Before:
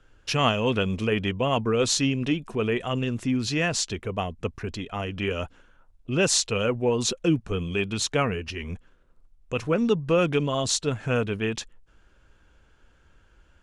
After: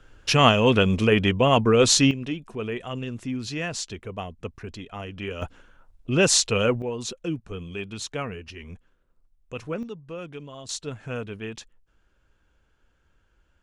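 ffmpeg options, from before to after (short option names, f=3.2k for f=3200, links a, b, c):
-af "asetnsamples=n=441:p=0,asendcmd='2.11 volume volume -5dB;5.42 volume volume 3dB;6.82 volume volume -7dB;9.83 volume volume -15dB;10.69 volume volume -7.5dB',volume=5.5dB"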